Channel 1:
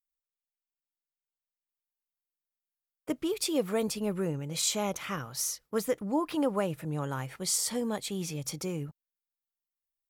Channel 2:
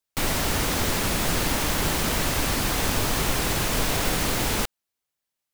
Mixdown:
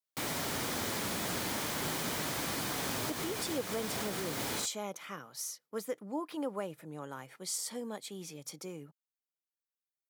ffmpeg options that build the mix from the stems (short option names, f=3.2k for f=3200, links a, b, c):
-filter_complex "[0:a]highpass=190,volume=-7.5dB,asplit=2[a][b];[1:a]flanger=delay=5.8:depth=4.4:regen=-64:speed=0.41:shape=triangular,volume=-5.5dB[c];[b]apad=whole_len=243933[d];[c][d]sidechaincompress=threshold=-39dB:ratio=4:attack=10:release=225[e];[a][e]amix=inputs=2:normalize=0,highpass=130,bandreject=f=2.7k:w=16"